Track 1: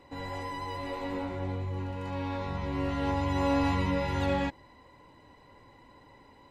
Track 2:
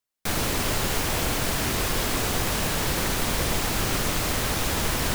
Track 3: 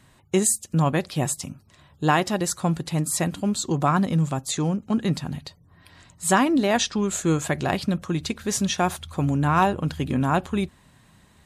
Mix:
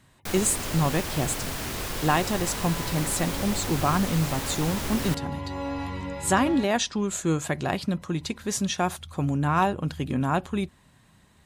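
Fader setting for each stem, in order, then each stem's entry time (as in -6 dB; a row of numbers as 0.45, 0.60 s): -5.0, -6.5, -3.0 dB; 2.15, 0.00, 0.00 s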